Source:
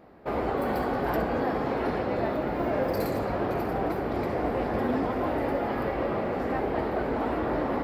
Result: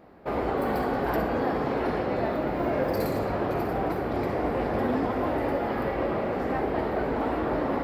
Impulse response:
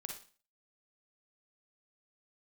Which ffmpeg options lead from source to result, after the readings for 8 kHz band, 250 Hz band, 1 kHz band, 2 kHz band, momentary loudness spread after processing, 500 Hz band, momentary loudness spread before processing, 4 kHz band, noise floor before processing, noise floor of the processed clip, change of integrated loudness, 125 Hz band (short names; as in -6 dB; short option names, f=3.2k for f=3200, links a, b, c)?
n/a, +1.0 dB, +1.0 dB, +1.0 dB, 2 LU, +1.0 dB, 2 LU, +1.0 dB, -31 dBFS, -30 dBFS, +1.0 dB, +1.0 dB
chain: -filter_complex "[0:a]asplit=2[a][b];[1:a]atrim=start_sample=2205[c];[b][c]afir=irnorm=-1:irlink=0,volume=1dB[d];[a][d]amix=inputs=2:normalize=0,volume=-4dB"